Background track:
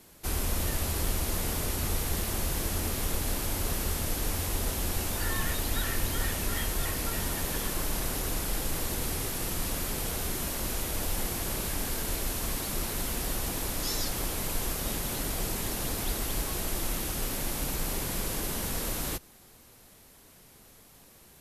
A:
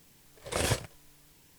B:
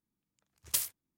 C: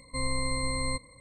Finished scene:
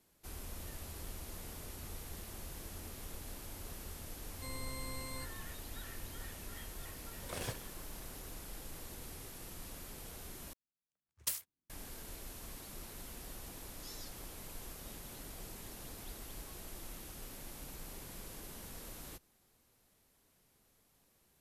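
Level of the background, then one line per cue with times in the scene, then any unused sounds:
background track −16.5 dB
0:04.28: mix in C −14.5 dB
0:06.77: mix in A −13 dB
0:10.53: overwrite with B −7.5 dB + multiband upward and downward expander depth 40%

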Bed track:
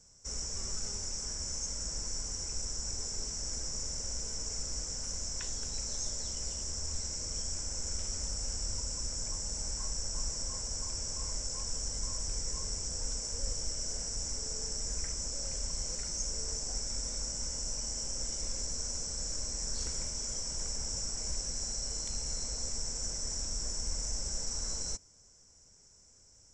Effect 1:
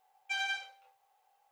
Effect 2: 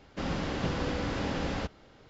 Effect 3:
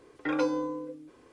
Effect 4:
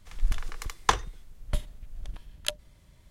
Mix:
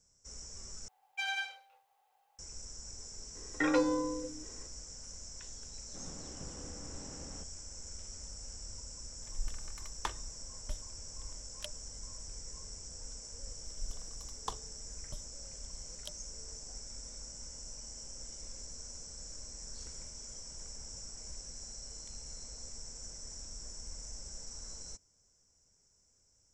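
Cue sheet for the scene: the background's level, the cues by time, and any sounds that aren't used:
bed track −10 dB
0:00.88: overwrite with 1 −1.5 dB
0:03.35: mix in 3 −1 dB + hollow resonant body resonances 1,900/3,900 Hz, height 13 dB
0:05.77: mix in 2 −17 dB + low-pass filter 1,100 Hz 6 dB per octave
0:09.16: mix in 4 −15 dB + comb filter 3.3 ms, depth 48%
0:13.59: mix in 4 −16 dB + flat-topped bell 1,900 Hz −14 dB 1.1 octaves

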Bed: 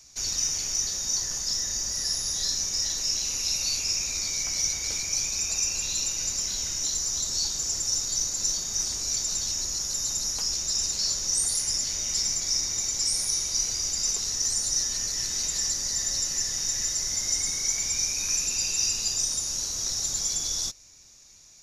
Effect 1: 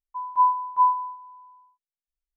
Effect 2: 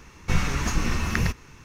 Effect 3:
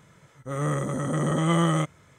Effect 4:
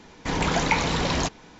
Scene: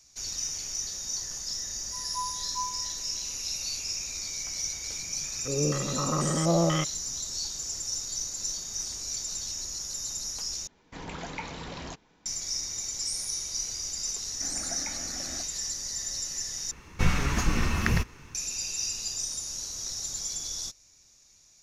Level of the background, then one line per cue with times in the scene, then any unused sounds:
bed −6 dB
0:01.78: mix in 1 −16 dB
0:04.99: mix in 3 −4 dB + low-pass on a step sequencer 4.1 Hz 250–7,900 Hz
0:10.67: overwrite with 4 −15 dB
0:14.15: mix in 4 −15.5 dB + phaser with its sweep stopped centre 660 Hz, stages 8
0:16.71: overwrite with 2 −1 dB

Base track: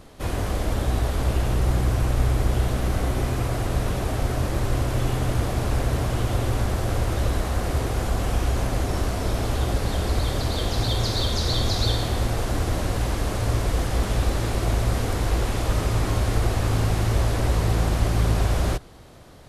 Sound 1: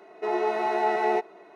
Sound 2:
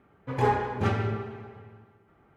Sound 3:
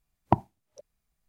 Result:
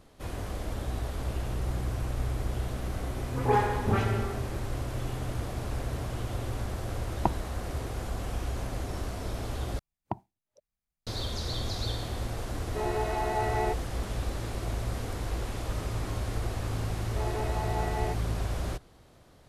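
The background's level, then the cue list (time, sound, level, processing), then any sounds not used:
base track −10 dB
0:03.06: mix in 2 −0.5 dB + all-pass dispersion highs, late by 99 ms, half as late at 2,000 Hz
0:06.93: mix in 3 −4.5 dB
0:09.79: overwrite with 3 −12 dB
0:12.53: mix in 1 −5.5 dB
0:16.93: mix in 1 −10 dB

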